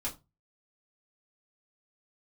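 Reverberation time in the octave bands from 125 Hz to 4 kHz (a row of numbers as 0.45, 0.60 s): 0.45, 0.30, 0.25, 0.25, 0.20, 0.20 s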